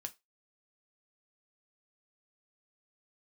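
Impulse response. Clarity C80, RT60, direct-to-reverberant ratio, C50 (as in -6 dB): 30.0 dB, 0.20 s, 5.0 dB, 21.5 dB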